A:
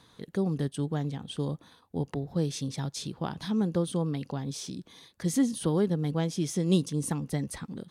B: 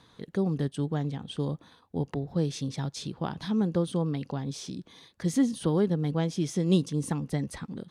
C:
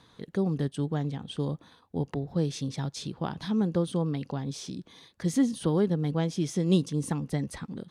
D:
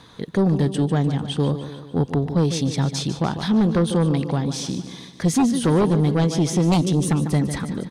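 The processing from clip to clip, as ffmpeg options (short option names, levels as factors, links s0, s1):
-af "highshelf=f=8900:g=-11.5,volume=1.12"
-af anull
-af "aecho=1:1:148|296|444|592|740|888:0.251|0.136|0.0732|0.0396|0.0214|0.0115,aeval=exprs='0.224*sin(PI/2*2.24*val(0)/0.224)':c=same"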